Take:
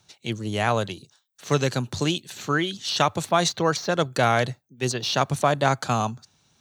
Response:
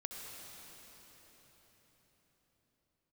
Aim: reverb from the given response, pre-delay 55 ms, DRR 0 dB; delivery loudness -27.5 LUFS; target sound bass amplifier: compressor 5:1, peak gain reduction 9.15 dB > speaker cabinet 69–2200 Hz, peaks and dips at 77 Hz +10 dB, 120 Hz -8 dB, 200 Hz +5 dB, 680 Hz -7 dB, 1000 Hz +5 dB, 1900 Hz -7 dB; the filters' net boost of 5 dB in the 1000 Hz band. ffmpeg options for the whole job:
-filter_complex "[0:a]equalizer=f=1k:t=o:g=6,asplit=2[a][b];[1:a]atrim=start_sample=2205,adelay=55[c];[b][c]afir=irnorm=-1:irlink=0,volume=1dB[d];[a][d]amix=inputs=2:normalize=0,acompressor=threshold=-19dB:ratio=5,highpass=f=69:w=0.5412,highpass=f=69:w=1.3066,equalizer=f=77:t=q:w=4:g=10,equalizer=f=120:t=q:w=4:g=-8,equalizer=f=200:t=q:w=4:g=5,equalizer=f=680:t=q:w=4:g=-7,equalizer=f=1k:t=q:w=4:g=5,equalizer=f=1.9k:t=q:w=4:g=-7,lowpass=f=2.2k:w=0.5412,lowpass=f=2.2k:w=1.3066,volume=-2.5dB"

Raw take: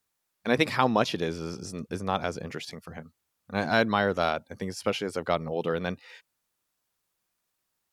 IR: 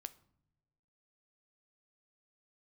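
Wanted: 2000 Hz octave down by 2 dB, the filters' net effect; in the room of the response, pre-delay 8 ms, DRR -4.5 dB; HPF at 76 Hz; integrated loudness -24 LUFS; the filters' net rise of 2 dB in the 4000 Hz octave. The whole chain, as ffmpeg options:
-filter_complex "[0:a]highpass=76,equalizer=f=2k:t=o:g=-3.5,equalizer=f=4k:t=o:g=3.5,asplit=2[a][b];[1:a]atrim=start_sample=2205,adelay=8[c];[b][c]afir=irnorm=-1:irlink=0,volume=9dB[d];[a][d]amix=inputs=2:normalize=0,volume=-1dB"

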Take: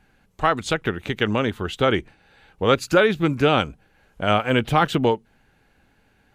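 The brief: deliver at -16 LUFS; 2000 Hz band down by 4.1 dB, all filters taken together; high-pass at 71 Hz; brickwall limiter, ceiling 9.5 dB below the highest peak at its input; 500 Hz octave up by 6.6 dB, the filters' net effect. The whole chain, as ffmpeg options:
-af "highpass=71,equalizer=f=500:t=o:g=8,equalizer=f=2k:t=o:g=-6.5,volume=6dB,alimiter=limit=-4.5dB:level=0:latency=1"

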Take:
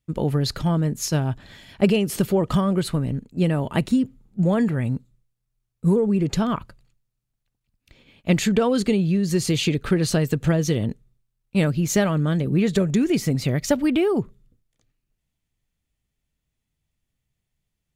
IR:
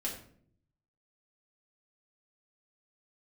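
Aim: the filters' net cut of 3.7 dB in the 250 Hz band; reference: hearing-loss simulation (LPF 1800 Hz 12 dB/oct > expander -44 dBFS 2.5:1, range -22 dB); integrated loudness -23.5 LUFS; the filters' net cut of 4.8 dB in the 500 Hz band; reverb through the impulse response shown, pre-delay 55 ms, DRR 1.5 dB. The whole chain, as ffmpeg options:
-filter_complex "[0:a]equalizer=f=250:t=o:g=-4.5,equalizer=f=500:t=o:g=-4.5,asplit=2[a][b];[1:a]atrim=start_sample=2205,adelay=55[c];[b][c]afir=irnorm=-1:irlink=0,volume=-3.5dB[d];[a][d]amix=inputs=2:normalize=0,lowpass=1.8k,agate=range=-22dB:threshold=-44dB:ratio=2.5,volume=-1dB"

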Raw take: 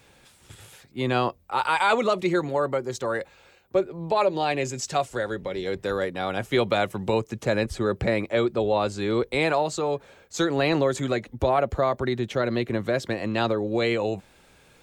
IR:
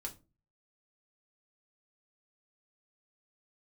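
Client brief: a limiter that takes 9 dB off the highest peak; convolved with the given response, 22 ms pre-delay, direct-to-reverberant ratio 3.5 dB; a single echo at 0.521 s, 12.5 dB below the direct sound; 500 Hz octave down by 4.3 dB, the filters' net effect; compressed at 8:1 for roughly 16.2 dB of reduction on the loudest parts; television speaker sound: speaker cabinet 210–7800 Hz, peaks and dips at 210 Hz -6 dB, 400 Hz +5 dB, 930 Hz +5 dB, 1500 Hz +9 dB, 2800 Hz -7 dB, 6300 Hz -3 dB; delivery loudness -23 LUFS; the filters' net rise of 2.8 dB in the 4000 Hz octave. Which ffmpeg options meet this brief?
-filter_complex "[0:a]equalizer=f=500:t=o:g=-8.5,equalizer=f=4k:t=o:g=5,acompressor=threshold=-37dB:ratio=8,alimiter=level_in=8dB:limit=-24dB:level=0:latency=1,volume=-8dB,aecho=1:1:521:0.237,asplit=2[a][b];[1:a]atrim=start_sample=2205,adelay=22[c];[b][c]afir=irnorm=-1:irlink=0,volume=-1.5dB[d];[a][d]amix=inputs=2:normalize=0,highpass=f=210:w=0.5412,highpass=f=210:w=1.3066,equalizer=f=210:t=q:w=4:g=-6,equalizer=f=400:t=q:w=4:g=5,equalizer=f=930:t=q:w=4:g=5,equalizer=f=1.5k:t=q:w=4:g=9,equalizer=f=2.8k:t=q:w=4:g=-7,equalizer=f=6.3k:t=q:w=4:g=-3,lowpass=f=7.8k:w=0.5412,lowpass=f=7.8k:w=1.3066,volume=17dB"

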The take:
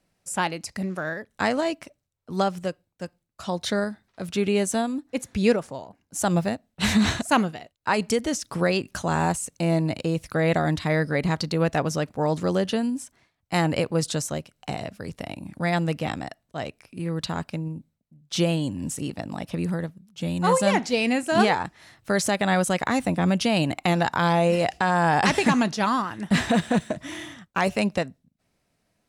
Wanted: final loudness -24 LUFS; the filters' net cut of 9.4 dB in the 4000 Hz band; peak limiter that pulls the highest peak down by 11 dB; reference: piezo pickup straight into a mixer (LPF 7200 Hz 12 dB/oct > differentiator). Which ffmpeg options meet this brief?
-af "equalizer=f=4k:t=o:g=-4.5,alimiter=limit=-18.5dB:level=0:latency=1,lowpass=7.2k,aderivative,volume=19dB"

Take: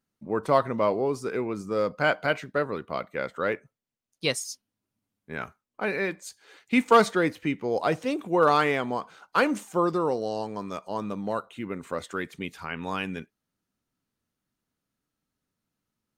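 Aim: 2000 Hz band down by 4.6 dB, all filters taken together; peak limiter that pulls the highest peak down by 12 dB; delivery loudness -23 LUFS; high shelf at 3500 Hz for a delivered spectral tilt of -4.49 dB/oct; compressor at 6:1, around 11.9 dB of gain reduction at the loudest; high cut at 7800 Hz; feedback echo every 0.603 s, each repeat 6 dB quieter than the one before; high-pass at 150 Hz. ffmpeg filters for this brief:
-af "highpass=150,lowpass=7.8k,equalizer=f=2k:t=o:g=-7.5,highshelf=f=3.5k:g=3.5,acompressor=threshold=-26dB:ratio=6,alimiter=level_in=2.5dB:limit=-24dB:level=0:latency=1,volume=-2.5dB,aecho=1:1:603|1206|1809|2412|3015|3618:0.501|0.251|0.125|0.0626|0.0313|0.0157,volume=14dB"

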